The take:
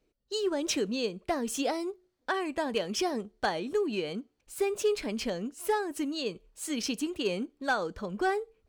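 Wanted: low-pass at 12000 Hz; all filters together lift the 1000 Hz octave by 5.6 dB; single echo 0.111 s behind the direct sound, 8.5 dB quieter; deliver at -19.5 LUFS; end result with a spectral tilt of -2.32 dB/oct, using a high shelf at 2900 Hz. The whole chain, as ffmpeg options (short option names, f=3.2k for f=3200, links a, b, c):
-af "lowpass=12k,equalizer=f=1k:t=o:g=7,highshelf=f=2.9k:g=6.5,aecho=1:1:111:0.376,volume=9dB"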